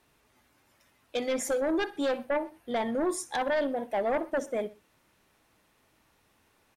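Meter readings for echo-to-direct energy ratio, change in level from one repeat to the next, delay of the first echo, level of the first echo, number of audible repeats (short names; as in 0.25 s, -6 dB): -19.0 dB, -6.5 dB, 62 ms, -20.0 dB, 2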